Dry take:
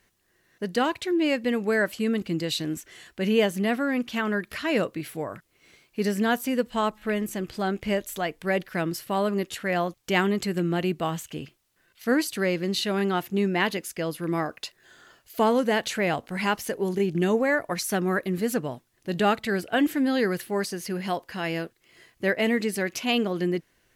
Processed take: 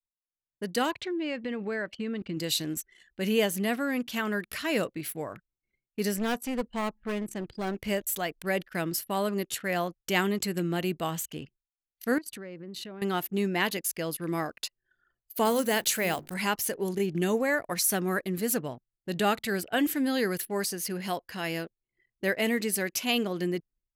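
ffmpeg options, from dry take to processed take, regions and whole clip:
ffmpeg -i in.wav -filter_complex "[0:a]asettb=1/sr,asplit=3[link_01][link_02][link_03];[link_01]atrim=end=0.914[link_04];[link_02]atrim=start=0.91:end=2.37,asetpts=PTS-STARTPTS,afade=type=in:duration=0.004:curve=qsin,afade=type=out:start_time=1.456:duration=0.004:curve=qsin,lowpass=3700,acompressor=threshold=-25dB:ratio=4:attack=3.2:release=140:knee=1:detection=peak[link_05];[link_03]atrim=start=2.366[link_06];[link_04][link_05]acrossfade=duration=0.004:curve1=hsin:curve2=qsin[link_07];[link_07][link_06]acrossfade=duration=0.004:curve1=qsin:curve2=hsin,asettb=1/sr,asplit=3[link_08][link_09][link_10];[link_08]atrim=end=6.164[link_11];[link_09]atrim=start=6.16:end=7.75,asetpts=PTS-STARTPTS,afade=type=in:duration=0.004:curve=qsin,afade=type=out:start_time=1.586:duration=0.004:curve=qsin,lowpass=10000,highshelf=frequency=2700:gain=-5.5,aeval=exprs='clip(val(0),-1,0.0355)':channel_layout=same[link_12];[link_10]atrim=start=7.746[link_13];[link_11][link_12]acrossfade=duration=0.004:curve1=hsin:curve2=qsin[link_14];[link_14][link_13]acrossfade=duration=0.004:curve1=qsin:curve2=hsin,asettb=1/sr,asplit=3[link_15][link_16][link_17];[link_15]atrim=end=12.184[link_18];[link_16]atrim=start=12.18:end=13.02,asetpts=PTS-STARTPTS,afade=type=in:duration=0.004:curve=qsin,afade=type=out:start_time=0.836:duration=0.004:curve=qsin,highshelf=frequency=2600:gain=-9,acompressor=threshold=-36dB:ratio=4:attack=3.2:release=140:knee=1:detection=peak[link_19];[link_17]atrim=start=13.016[link_20];[link_18][link_19]acrossfade=duration=0.004:curve1=hsin:curve2=qsin[link_21];[link_21][link_20]acrossfade=duration=0.004:curve1=qsin:curve2=hsin,asettb=1/sr,asplit=3[link_22][link_23][link_24];[link_22]atrim=end=15.454[link_25];[link_23]atrim=start=15.45:end=16.34,asetpts=PTS-STARTPTS,afade=type=in:duration=0.004:curve=qsin,afade=type=out:start_time=0.886:duration=0.004:curve=qsin,highshelf=frequency=6700:gain=8,bandreject=frequency=50:width_type=h:width=6,bandreject=frequency=100:width_type=h:width=6,bandreject=frequency=150:width_type=h:width=6,bandreject=frequency=200:width_type=h:width=6,bandreject=frequency=250:width_type=h:width=6,bandreject=frequency=300:width_type=h:width=6,bandreject=frequency=350:width_type=h:width=6,bandreject=frequency=400:width_type=h:width=6,acrusher=bits=9:dc=4:mix=0:aa=0.000001[link_26];[link_24]atrim=start=16.336[link_27];[link_25][link_26]acrossfade=duration=0.004:curve1=hsin:curve2=qsin[link_28];[link_28][link_27]acrossfade=duration=0.004:curve1=qsin:curve2=hsin,agate=range=-33dB:threshold=-55dB:ratio=3:detection=peak,anlmdn=0.1,aemphasis=mode=production:type=50kf,volume=-4dB" out.wav

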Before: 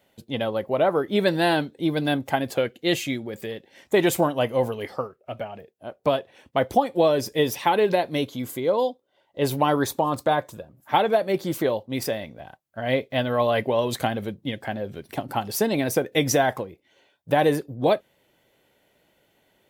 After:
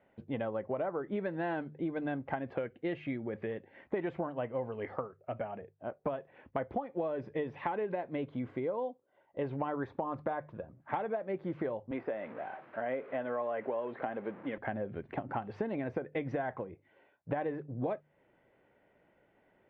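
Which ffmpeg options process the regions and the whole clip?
ffmpeg -i in.wav -filter_complex "[0:a]asettb=1/sr,asplit=3[link_01][link_02][link_03];[link_01]atrim=end=11.914[link_04];[link_02]atrim=start=11.91:end=14.58,asetpts=PTS-STARTPTS,afade=type=in:duration=0.004:curve=qsin,afade=type=out:start_time=2.666:duration=0.004:curve=qsin,aeval=exprs='val(0)+0.5*0.0158*sgn(val(0))':channel_layout=same,deesser=0.85,highpass=320,lowpass=3700[link_05];[link_03]atrim=start=14.576[link_06];[link_04][link_05]acrossfade=duration=0.004:curve1=hsin:curve2=qsin[link_07];[link_07][link_06]acrossfade=duration=0.004:curve1=qsin:curve2=hsin,lowpass=frequency=2100:width=0.5412,lowpass=frequency=2100:width=1.3066,bandreject=frequency=50:width_type=h:width=6,bandreject=frequency=100:width_type=h:width=6,bandreject=frequency=150:width_type=h:width=6,acompressor=threshold=-30dB:ratio=6,volume=-2.5dB" out.wav

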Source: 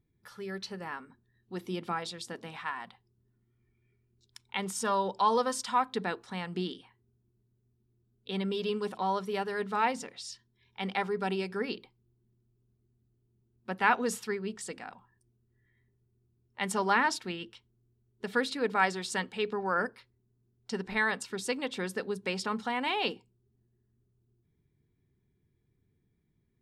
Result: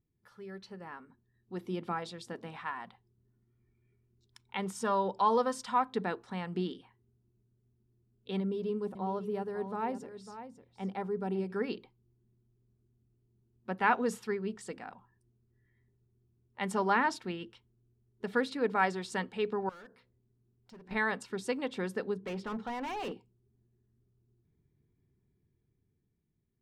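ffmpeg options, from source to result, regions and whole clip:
ffmpeg -i in.wav -filter_complex "[0:a]asettb=1/sr,asplit=3[link_01][link_02][link_03];[link_01]atrim=end=8.404[link_04];[link_02]atrim=start=8.4:end=11.5,asetpts=PTS-STARTPTS,afade=type=in:duration=0.004:curve=qsin,afade=type=out:start_time=3.096:duration=0.004:curve=qsin,equalizer=frequency=2800:width=0.34:gain=-12,aecho=1:1:550:0.266,atrim=end_sample=136710[link_05];[link_03]atrim=start=11.496[link_06];[link_04][link_05]acrossfade=duration=0.004:curve1=hsin:curve2=qsin[link_07];[link_07][link_06]acrossfade=duration=0.004:curve1=qsin:curve2=hsin,asettb=1/sr,asplit=3[link_08][link_09][link_10];[link_08]atrim=end=19.694[link_11];[link_09]atrim=start=19.69:end=20.91,asetpts=PTS-STARTPTS,afade=type=in:duration=0.004:curve=qsin,afade=type=out:start_time=1.216:duration=0.004:curve=qsin,volume=36dB,asoftclip=hard,volume=-36dB,acompressor=threshold=-60dB:ratio=2:attack=3.2:release=140:knee=1:detection=peak,bandreject=frequency=62.51:width_type=h:width=4,bandreject=frequency=125.02:width_type=h:width=4,bandreject=frequency=187.53:width_type=h:width=4,bandreject=frequency=250.04:width_type=h:width=4,bandreject=frequency=312.55:width_type=h:width=4,bandreject=frequency=375.06:width_type=h:width=4,bandreject=frequency=437.57:width_type=h:width=4,bandreject=frequency=500.08:width_type=h:width=4,bandreject=frequency=562.59:width_type=h:width=4,bandreject=frequency=625.1:width_type=h:width=4,bandreject=frequency=687.61:width_type=h:width=4[link_12];[link_10]atrim=start=20.906[link_13];[link_11][link_12]acrossfade=duration=0.004:curve1=hsin:curve2=qsin[link_14];[link_14][link_13]acrossfade=duration=0.004:curve1=qsin:curve2=hsin,asettb=1/sr,asplit=3[link_15][link_16][link_17];[link_15]atrim=end=22.144[link_18];[link_16]atrim=start=22.14:end=23.12,asetpts=PTS-STARTPTS,afade=type=in:duration=0.004:curve=qsin,afade=type=out:start_time=0.976:duration=0.004:curve=qsin,bass=frequency=250:gain=0,treble=frequency=4000:gain=-14,bandreject=frequency=50:width_type=h:width=6,bandreject=frequency=100:width_type=h:width=6,bandreject=frequency=150:width_type=h:width=6,bandreject=frequency=200:width_type=h:width=6,bandreject=frequency=250:width_type=h:width=6,bandreject=frequency=300:width_type=h:width=6,bandreject=frequency=350:width_type=h:width=6,bandreject=frequency=400:width_type=h:width=6,bandreject=frequency=450:width_type=h:width=6,asoftclip=type=hard:threshold=-33.5dB[link_19];[link_17]atrim=start=23.116[link_20];[link_18][link_19]acrossfade=duration=0.004:curve1=hsin:curve2=qsin[link_21];[link_21][link_20]acrossfade=duration=0.004:curve1=qsin:curve2=hsin,highshelf=frequency=2100:gain=-9.5,dynaudnorm=framelen=200:gausssize=13:maxgain=6.5dB,volume=-6dB" out.wav

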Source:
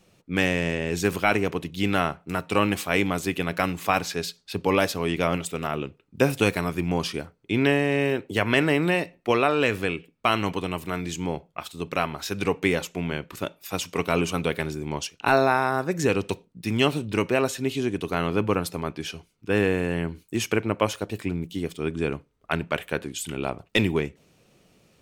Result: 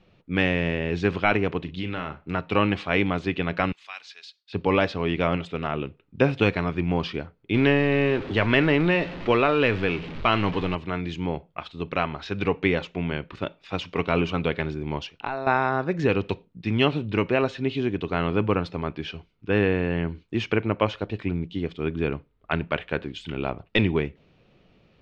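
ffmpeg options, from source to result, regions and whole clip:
ffmpeg -i in.wav -filter_complex "[0:a]asettb=1/sr,asplit=3[link_01][link_02][link_03];[link_01]atrim=end=1.634[link_04];[link_02]atrim=start=1.63:end=2.3,asetpts=PTS-STARTPTS,afade=type=in:duration=0.004:curve=qsin,afade=type=out:start_time=0.666:duration=0.004:curve=qsin,bandreject=frequency=710:width=7.8,acompressor=threshold=-27dB:ratio=3:attack=3.2:release=140:knee=1:detection=peak,asplit=2[link_05][link_06];[link_06]adelay=38,volume=-10dB[link_07];[link_05][link_07]amix=inputs=2:normalize=0,atrim=end_sample=29547[link_08];[link_03]atrim=start=2.296[link_09];[link_04][link_08]acrossfade=duration=0.004:curve1=hsin:curve2=qsin[link_10];[link_10][link_09]acrossfade=duration=0.004:curve1=qsin:curve2=hsin,asettb=1/sr,asplit=3[link_11][link_12][link_13];[link_11]atrim=end=3.724[link_14];[link_12]atrim=start=3.72:end=4.53,asetpts=PTS-STARTPTS,afade=type=in:duration=0.004:curve=qsin,afade=type=out:start_time=0.806:duration=0.004:curve=qsin,highpass=frequency=1100:poles=1,aderivative,acrusher=bits=9:mode=log:mix=0:aa=0.000001[link_15];[link_13]atrim=start=4.526[link_16];[link_14][link_15]acrossfade=duration=0.004:curve1=hsin:curve2=qsin[link_17];[link_17][link_16]acrossfade=duration=0.004:curve1=qsin:curve2=hsin,asettb=1/sr,asplit=3[link_18][link_19][link_20];[link_18]atrim=end=7.544[link_21];[link_19]atrim=start=7.54:end=10.75,asetpts=PTS-STARTPTS,afade=type=in:duration=0.004:curve=qsin,afade=type=out:start_time=3.206:duration=0.004:curve=qsin,aeval=exprs='val(0)+0.5*0.0282*sgn(val(0))':channel_layout=same,bandreject=frequency=730:width=23[link_22];[link_20]atrim=start=10.746[link_23];[link_21][link_22]acrossfade=duration=0.004:curve1=hsin:curve2=qsin[link_24];[link_24][link_23]acrossfade=duration=0.004:curve1=qsin:curve2=hsin,asettb=1/sr,asplit=3[link_25][link_26][link_27];[link_25]atrim=end=15.054[link_28];[link_26]atrim=start=15.05:end=15.47,asetpts=PTS-STARTPTS,afade=type=in:duration=0.004:curve=qsin,afade=type=out:start_time=0.416:duration=0.004:curve=qsin,acompressor=threshold=-29dB:ratio=5:attack=3.2:release=140:knee=1:detection=peak,equalizer=frequency=860:width_type=o:width=0.83:gain=5[link_29];[link_27]atrim=start=15.466[link_30];[link_28][link_29]acrossfade=duration=0.004:curve1=hsin:curve2=qsin[link_31];[link_31][link_30]acrossfade=duration=0.004:curve1=qsin:curve2=hsin,lowpass=frequency=3900:width=0.5412,lowpass=frequency=3900:width=1.3066,lowshelf=frequency=65:gain=9.5" out.wav

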